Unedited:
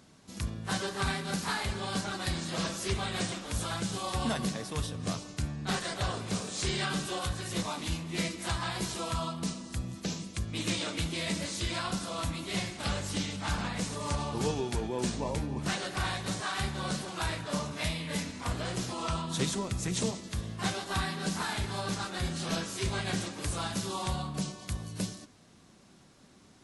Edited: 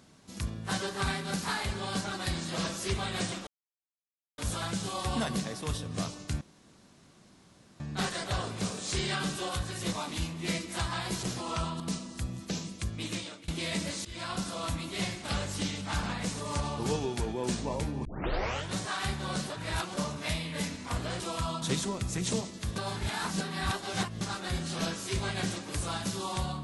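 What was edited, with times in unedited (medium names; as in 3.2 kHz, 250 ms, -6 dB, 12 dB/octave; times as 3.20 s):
3.47 s: insert silence 0.91 s
5.50 s: insert room tone 1.39 s
8.93–9.35 s: swap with 18.75–19.32 s
10.46–11.03 s: fade out linear, to -24 dB
11.60–12.04 s: fade in equal-power, from -19.5 dB
15.60 s: tape start 0.69 s
17.05–17.52 s: reverse
20.46–21.91 s: reverse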